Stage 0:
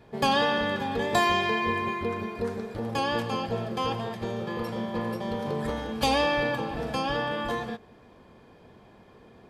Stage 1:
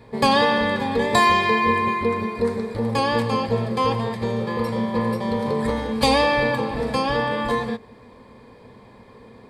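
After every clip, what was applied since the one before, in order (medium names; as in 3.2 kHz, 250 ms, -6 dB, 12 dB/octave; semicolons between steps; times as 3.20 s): rippled EQ curve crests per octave 0.96, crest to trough 8 dB; trim +5.5 dB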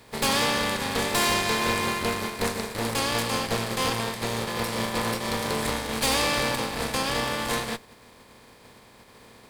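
spectral contrast reduction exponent 0.49; valve stage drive 19 dB, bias 0.8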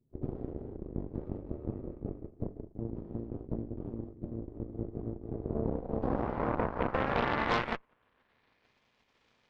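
low-pass sweep 160 Hz -> 2.9 kHz, 5.22–8.88 s; pre-echo 129 ms -21 dB; Chebyshev shaper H 4 -10 dB, 5 -26 dB, 7 -14 dB, 8 -20 dB, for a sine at -13 dBFS; trim -6.5 dB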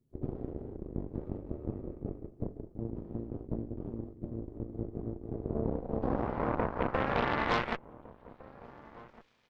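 echo from a far wall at 250 m, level -19 dB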